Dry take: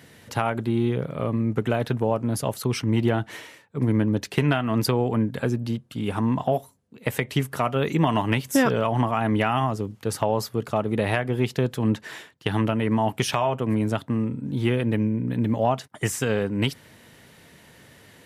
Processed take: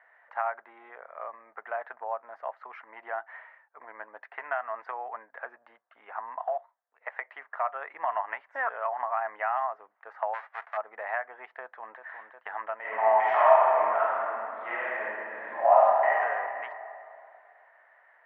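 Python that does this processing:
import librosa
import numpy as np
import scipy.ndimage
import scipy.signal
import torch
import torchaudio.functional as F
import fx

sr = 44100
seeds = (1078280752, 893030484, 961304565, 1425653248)

y = fx.highpass(x, sr, hz=fx.line((6.42, 540.0), (7.91, 170.0)), slope=12, at=(6.42, 7.91), fade=0.02)
y = fx.envelope_flatten(y, sr, power=0.1, at=(10.33, 10.76), fade=0.02)
y = fx.echo_throw(y, sr, start_s=11.61, length_s=0.42, ms=360, feedback_pct=80, wet_db=-6.5)
y = fx.reverb_throw(y, sr, start_s=12.8, length_s=3.36, rt60_s=2.5, drr_db=-11.0)
y = scipy.signal.sosfilt(scipy.signal.cheby1(3, 1.0, [670.0, 1900.0], 'bandpass', fs=sr, output='sos'), y)
y = y * 10.0 ** (-3.0 / 20.0)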